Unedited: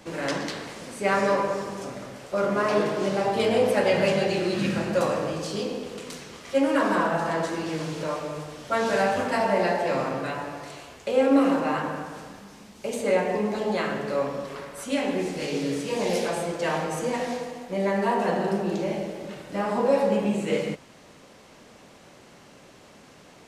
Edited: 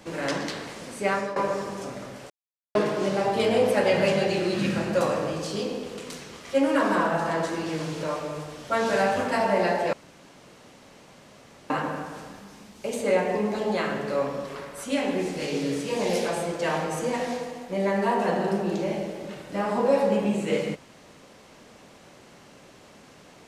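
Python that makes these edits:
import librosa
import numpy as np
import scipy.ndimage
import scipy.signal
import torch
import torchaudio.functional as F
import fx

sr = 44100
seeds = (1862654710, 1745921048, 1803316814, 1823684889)

y = fx.edit(x, sr, fx.fade_out_to(start_s=1.03, length_s=0.33, floor_db=-16.0),
    fx.silence(start_s=2.3, length_s=0.45),
    fx.room_tone_fill(start_s=9.93, length_s=1.77), tone=tone)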